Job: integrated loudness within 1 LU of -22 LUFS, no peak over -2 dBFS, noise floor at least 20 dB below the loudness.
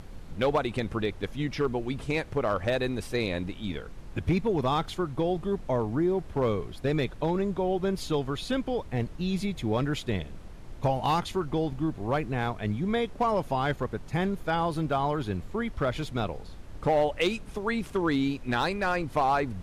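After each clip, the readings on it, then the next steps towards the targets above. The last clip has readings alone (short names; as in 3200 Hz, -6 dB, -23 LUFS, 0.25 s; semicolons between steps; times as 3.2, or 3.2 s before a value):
clipped 0.4%; flat tops at -17.5 dBFS; noise floor -44 dBFS; noise floor target -49 dBFS; loudness -29.0 LUFS; peak -17.5 dBFS; loudness target -22.0 LUFS
-> clip repair -17.5 dBFS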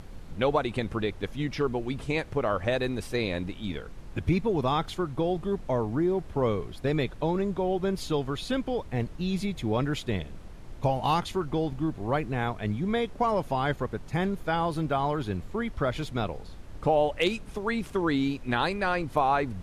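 clipped 0.0%; noise floor -44 dBFS; noise floor target -49 dBFS
-> noise print and reduce 6 dB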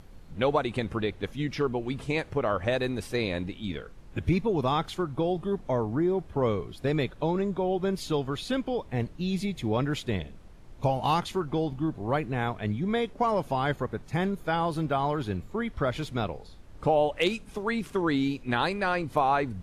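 noise floor -48 dBFS; noise floor target -49 dBFS
-> noise print and reduce 6 dB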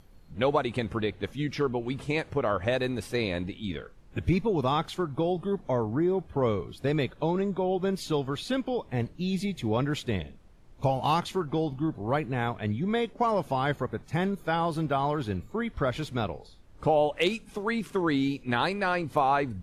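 noise floor -52 dBFS; loudness -29.0 LUFS; peak -10.5 dBFS; loudness target -22.0 LUFS
-> gain +7 dB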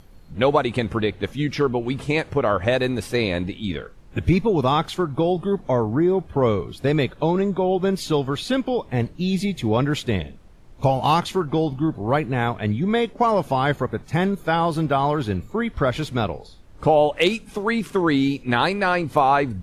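loudness -22.0 LUFS; peak -3.5 dBFS; noise floor -45 dBFS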